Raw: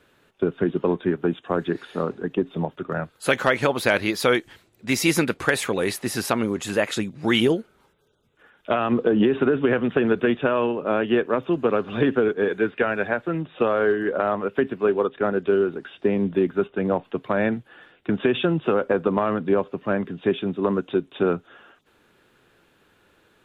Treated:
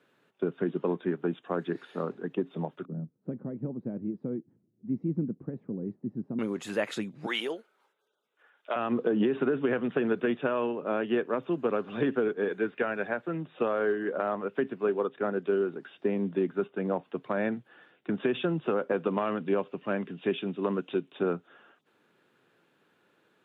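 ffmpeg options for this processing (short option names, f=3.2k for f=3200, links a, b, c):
-filter_complex "[0:a]asettb=1/sr,asplit=3[a][b][c];[a]atrim=end=2.854[d];[b]atrim=start=2.85:end=6.39,asetpts=PTS-STARTPTS,afade=t=in:d=0.004:c=qsin,afade=t=out:st=3.536:d=0.004:c=qsin,lowpass=f=220:t=q:w=1.6[e];[c]atrim=start=6.386[f];[d][e]acrossfade=d=0.004:c1=hsin:c2=qsin[g];[g][f]acrossfade=d=0.004:c1=qsin:c2=hsin,asettb=1/sr,asplit=3[h][i][j];[h]atrim=end=7.264[k];[i]atrim=start=7.26:end=8.76,asetpts=PTS-STARTPTS,afade=t=in:d=0.004:c=qsin,afade=t=out:st=1.496:d=0.004:c=qsin,highpass=560[l];[j]atrim=start=8.756[m];[k][l]acrossfade=d=0.004:c1=hsin:c2=qsin[n];[n][m]acrossfade=d=0.004:c1=qsin:c2=hsin,asettb=1/sr,asplit=3[o][p][q];[o]atrim=end=18.934[r];[p]atrim=start=18.93:end=21.12,asetpts=PTS-STARTPTS,afade=t=in:d=0.004:c=qsin,afade=t=out:st=2.186:d=0.004:c=qsin,equalizer=f=2.8k:w=1.9:g=8[s];[q]atrim=start=21.116[t];[r][s]acrossfade=d=0.004:c1=hsin:c2=qsin[u];[u][t]acrossfade=d=0.004:c1=qsin:c2=hsin,highpass=f=130:w=0.5412,highpass=f=130:w=1.3066,highshelf=f=4.1k:g=-6.5,volume=-7dB"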